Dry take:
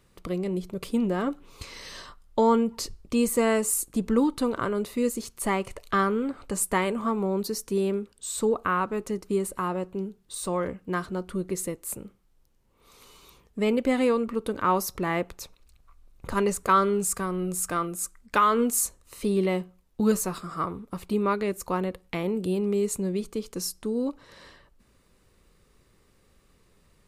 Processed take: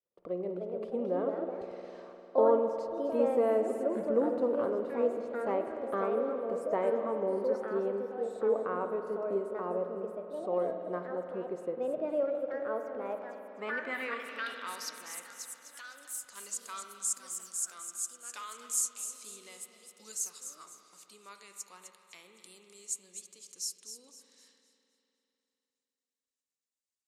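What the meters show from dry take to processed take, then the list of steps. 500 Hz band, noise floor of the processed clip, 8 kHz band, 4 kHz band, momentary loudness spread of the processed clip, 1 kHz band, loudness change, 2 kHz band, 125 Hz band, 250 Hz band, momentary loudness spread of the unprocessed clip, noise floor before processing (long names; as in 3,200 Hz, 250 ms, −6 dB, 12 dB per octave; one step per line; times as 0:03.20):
−3.0 dB, below −85 dBFS, −5.0 dB, −9.0 dB, 17 LU, −10.5 dB, −6.5 dB, −8.0 dB, below −15 dB, −12.5 dB, 11 LU, −63 dBFS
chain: downward expander −48 dBFS
delay with pitch and tempo change per echo 353 ms, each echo +3 semitones, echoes 2, each echo −6 dB
delay with a high-pass on its return 255 ms, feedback 34%, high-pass 3,300 Hz, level −9 dB
band-pass filter sweep 550 Hz → 6,900 Hz, 0:12.98–0:15.18
spring reverb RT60 3.4 s, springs 50 ms, chirp 25 ms, DRR 6 dB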